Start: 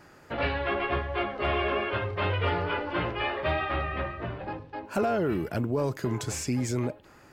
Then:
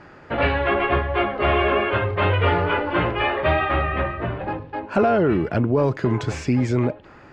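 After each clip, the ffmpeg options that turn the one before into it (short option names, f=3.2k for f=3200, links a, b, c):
-af "lowpass=3.1k,volume=8.5dB"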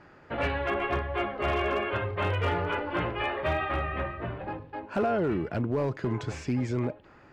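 -af "asoftclip=type=hard:threshold=-12dB,volume=-8.5dB"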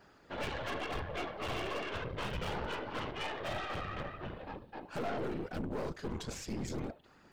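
-af "aexciter=amount=4:drive=2.6:freq=3.2k,afftfilt=real='hypot(re,im)*cos(2*PI*random(0))':imag='hypot(re,im)*sin(2*PI*random(1))':win_size=512:overlap=0.75,aeval=exprs='(tanh(50.1*val(0)+0.6)-tanh(0.6))/50.1':c=same,volume=1dB"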